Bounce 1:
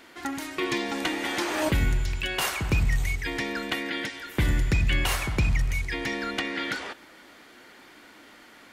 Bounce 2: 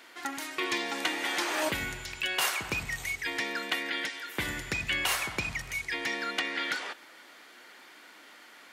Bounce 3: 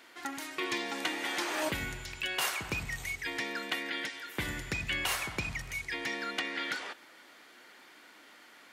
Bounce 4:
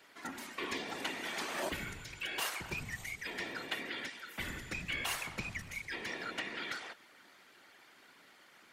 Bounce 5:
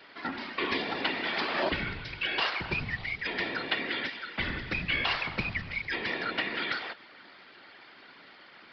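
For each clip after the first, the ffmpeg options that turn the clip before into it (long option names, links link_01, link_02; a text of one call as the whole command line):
ffmpeg -i in.wav -af "highpass=frequency=700:poles=1" out.wav
ffmpeg -i in.wav -af "lowshelf=frequency=250:gain=5,volume=-3.5dB" out.wav
ffmpeg -i in.wav -af "afftfilt=real='hypot(re,im)*cos(2*PI*random(0))':imag='hypot(re,im)*sin(2*PI*random(1))':win_size=512:overlap=0.75,volume=1dB" out.wav
ffmpeg -i in.wav -af "aresample=11025,aresample=44100,volume=8.5dB" out.wav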